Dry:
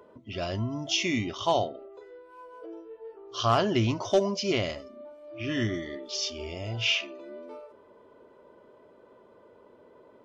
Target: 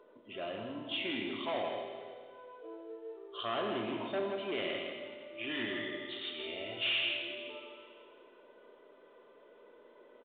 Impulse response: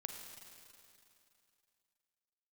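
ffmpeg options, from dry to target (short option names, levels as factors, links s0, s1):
-filter_complex "[0:a]asetnsamples=n=441:p=0,asendcmd='4.58 highshelf g 7.5',highshelf=f=2200:g=-4.5,volume=12.6,asoftclip=hard,volume=0.0794,equalizer=f=860:t=o:w=0.9:g=-4.5,aecho=1:1:162:0.447,asoftclip=type=tanh:threshold=0.0631,highpass=330[s0];[1:a]atrim=start_sample=2205,asetrate=61740,aresample=44100[s1];[s0][s1]afir=irnorm=-1:irlink=0,volume=1.41" -ar 8000 -c:a pcm_mulaw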